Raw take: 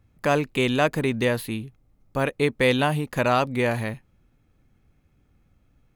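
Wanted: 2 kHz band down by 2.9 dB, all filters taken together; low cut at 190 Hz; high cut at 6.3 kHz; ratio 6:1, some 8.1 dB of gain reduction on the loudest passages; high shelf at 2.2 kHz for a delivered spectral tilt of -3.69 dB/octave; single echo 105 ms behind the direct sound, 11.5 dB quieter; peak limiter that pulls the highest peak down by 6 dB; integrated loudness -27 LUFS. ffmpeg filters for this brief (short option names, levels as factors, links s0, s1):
-af "highpass=190,lowpass=6300,equalizer=f=2000:t=o:g=-8.5,highshelf=f=2200:g=8,acompressor=threshold=0.0562:ratio=6,alimiter=limit=0.119:level=0:latency=1,aecho=1:1:105:0.266,volume=1.78"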